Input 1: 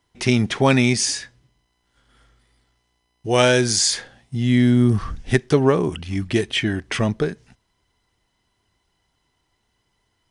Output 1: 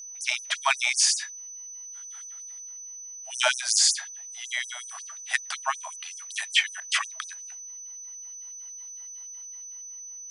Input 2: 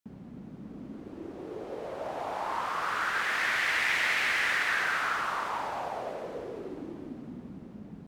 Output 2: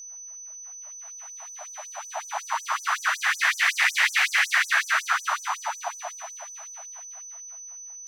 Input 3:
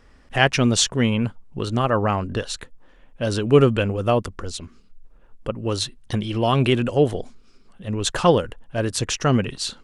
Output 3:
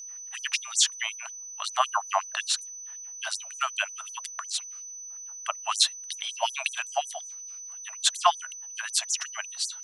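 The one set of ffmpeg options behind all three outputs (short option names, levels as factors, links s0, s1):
-af "dynaudnorm=f=190:g=9:m=3.16,aeval=exprs='val(0)+0.0141*sin(2*PI*6000*n/s)':c=same,afftfilt=real='re*gte(b*sr/1024,590*pow(5800/590,0.5+0.5*sin(2*PI*5.4*pts/sr)))':imag='im*gte(b*sr/1024,590*pow(5800/590,0.5+0.5*sin(2*PI*5.4*pts/sr)))':win_size=1024:overlap=0.75,volume=0.841"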